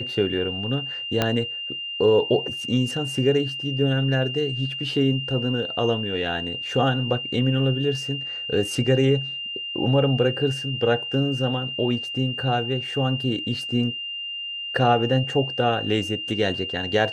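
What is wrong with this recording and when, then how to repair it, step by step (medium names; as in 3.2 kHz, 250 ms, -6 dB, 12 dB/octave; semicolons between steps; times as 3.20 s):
whine 2.8 kHz -29 dBFS
1.22 s: pop -6 dBFS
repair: de-click; band-stop 2.8 kHz, Q 30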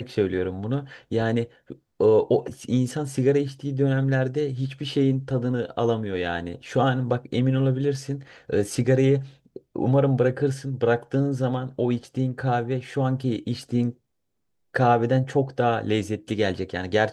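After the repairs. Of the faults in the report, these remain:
1.22 s: pop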